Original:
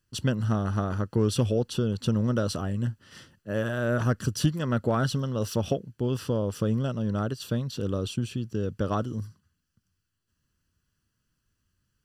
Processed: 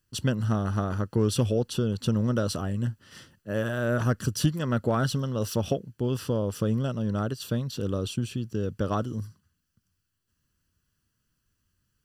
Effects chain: treble shelf 11 kHz +6.5 dB

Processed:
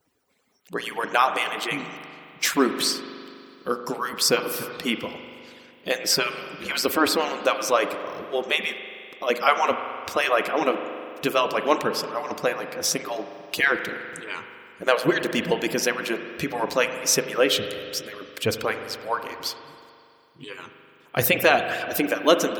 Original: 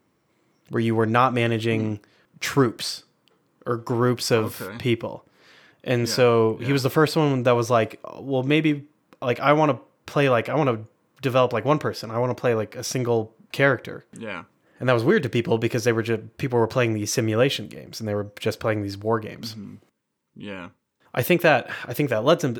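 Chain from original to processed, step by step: harmonic-percussive separation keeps percussive; treble shelf 3.2 kHz +8.5 dB; spring tank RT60 2.5 s, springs 41 ms, chirp 70 ms, DRR 7.5 dB

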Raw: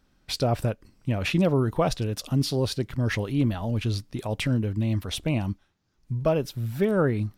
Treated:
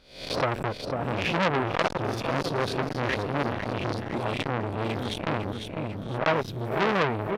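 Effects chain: reverse spectral sustain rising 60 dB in 0.49 s; tone controls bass -4 dB, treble -13 dB; on a send: feedback delay 499 ms, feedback 49%, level -7 dB; on the sum: transformer saturation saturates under 2.4 kHz; trim +4.5 dB

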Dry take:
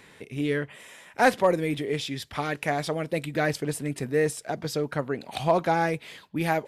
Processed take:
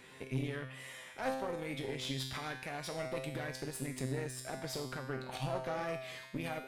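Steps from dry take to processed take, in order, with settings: compression 6:1, threshold -31 dBFS, peak gain reduction 15 dB; peak limiter -26.5 dBFS, peak gain reduction 8.5 dB; feedback comb 130 Hz, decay 0.97 s, harmonics all, mix 90%; Chebyshev shaper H 4 -15 dB, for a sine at -36.5 dBFS; wow and flutter 28 cents; trim +11.5 dB

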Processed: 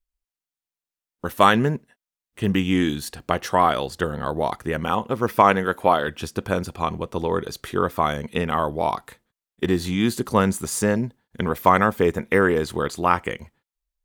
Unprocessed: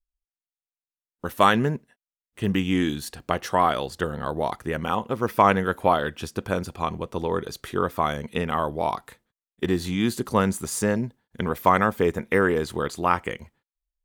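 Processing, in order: 5.41–6.08 s: bass shelf 110 Hz -10.5 dB; trim +2.5 dB

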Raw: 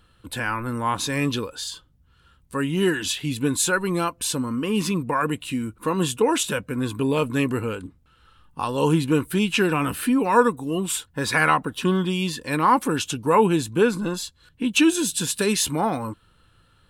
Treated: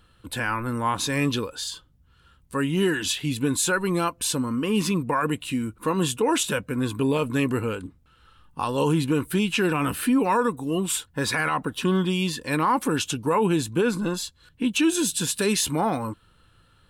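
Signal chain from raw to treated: peak limiter -13.5 dBFS, peak gain reduction 9.5 dB

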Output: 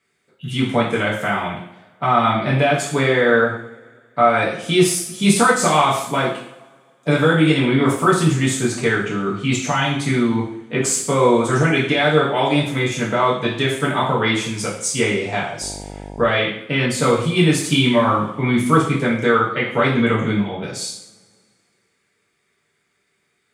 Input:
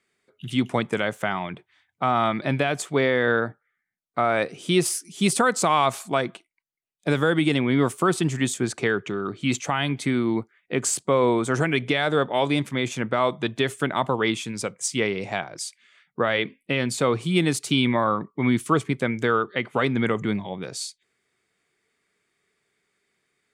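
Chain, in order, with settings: two-slope reverb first 0.59 s, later 2.2 s, from -24 dB, DRR -6 dB; 15.61–16.29 s: mains buzz 50 Hz, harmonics 19, -33 dBFS -3 dB/octave; trim -1 dB

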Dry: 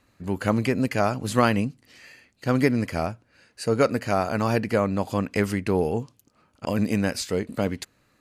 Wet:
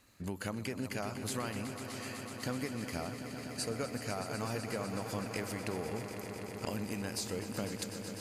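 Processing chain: treble shelf 3.6 kHz +10.5 dB; compression 6:1, threshold -32 dBFS, peak gain reduction 17.5 dB; on a send: echo with a slow build-up 125 ms, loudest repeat 5, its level -12 dB; on the sum: trim -4 dB

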